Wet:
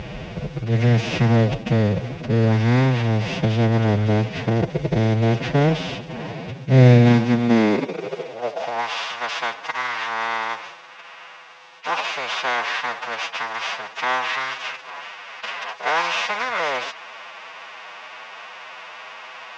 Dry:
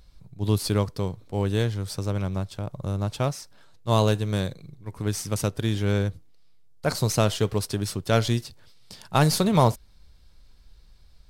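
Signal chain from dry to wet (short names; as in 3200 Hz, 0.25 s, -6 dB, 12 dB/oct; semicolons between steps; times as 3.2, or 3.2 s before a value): per-bin compression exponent 0.4; low shelf 89 Hz -4 dB; formant-preserving pitch shift +11.5 st; high-pass sweep 65 Hz -> 1900 Hz, 3.28–5.21; speed mistake 78 rpm record played at 45 rpm; air absorption 180 m; gain +2 dB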